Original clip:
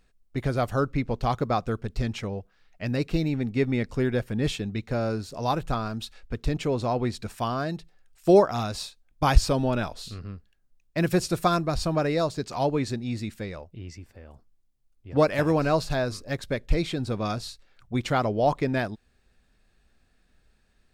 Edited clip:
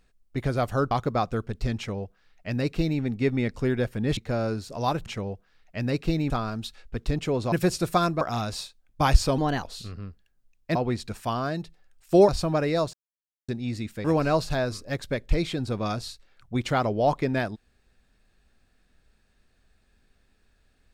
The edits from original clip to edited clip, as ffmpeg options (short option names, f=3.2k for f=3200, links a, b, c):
-filter_complex "[0:a]asplit=14[a][b][c][d][e][f][g][h][i][j][k][l][m][n];[a]atrim=end=0.912[o];[b]atrim=start=1.258:end=4.522[p];[c]atrim=start=4.788:end=5.682[q];[d]atrim=start=2.118:end=3.362[r];[e]atrim=start=5.678:end=6.902[s];[f]atrim=start=11.018:end=11.712[t];[g]atrim=start=8.428:end=9.604[u];[h]atrim=start=9.6:end=9.9,asetpts=PTS-STARTPTS,asetrate=52038,aresample=44100[v];[i]atrim=start=9.896:end=11.022[w];[j]atrim=start=6.898:end=8.432[x];[k]atrim=start=11.708:end=12.36,asetpts=PTS-STARTPTS,afade=t=out:st=0.648:d=0.004:c=hsin[y];[l]atrim=start=12.36:end=12.91,asetpts=PTS-STARTPTS,volume=0[z];[m]atrim=start=12.91:end=13.472,asetpts=PTS-STARTPTS,afade=t=in:d=0.004:c=hsin[aa];[n]atrim=start=15.438[ab];[o][p]acrossfade=d=0.004:c1=hsin:c2=hsin[ac];[ac][q]acrossfade=d=0.004:c1=hsin:c2=hsin[ad];[ad][r]acrossfade=d=0.004:c1=hsin:c2=hsin[ae];[ae][s]acrossfade=d=0.004:c1=hsin:c2=hsin[af];[af][t]acrossfade=d=0.004:c1=hsin:c2=hsin[ag];[ag][u]acrossfade=d=0.004:c1=hsin:c2=hsin[ah];[ah][v]acrossfade=d=0.004:c1=hsin:c2=hsin[ai];[ai][w]acrossfade=d=0.004:c1=hsin:c2=hsin[aj];[aj][x]acrossfade=d=0.004:c1=hsin:c2=hsin[ak];[y][z][aa]concat=n=3:v=0:a=1[al];[ak][al]acrossfade=d=0.004:c1=hsin:c2=hsin[am];[am][ab]acrossfade=d=0.004:c1=hsin:c2=hsin"